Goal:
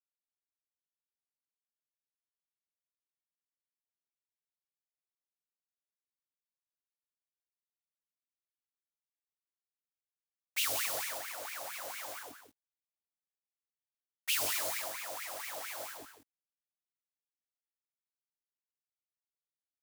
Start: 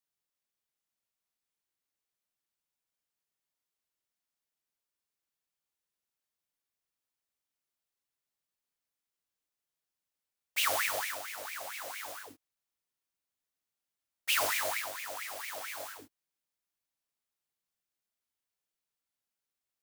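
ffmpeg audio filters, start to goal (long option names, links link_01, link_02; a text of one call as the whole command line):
ffmpeg -i in.wav -filter_complex "[0:a]aeval=exprs='val(0)*gte(abs(val(0)),0.00224)':channel_layout=same,asplit=2[link_01][link_02];[link_02]aecho=0:1:178:0.335[link_03];[link_01][link_03]amix=inputs=2:normalize=0,adynamicequalizer=threshold=0.00501:dfrequency=1900:dqfactor=0.72:tfrequency=1900:tqfactor=0.72:attack=5:release=100:ratio=0.375:range=2:mode=cutabove:tftype=bell,acrossover=split=430|3000[link_04][link_05][link_06];[link_05]acompressor=threshold=-40dB:ratio=6[link_07];[link_04][link_07][link_06]amix=inputs=3:normalize=0" out.wav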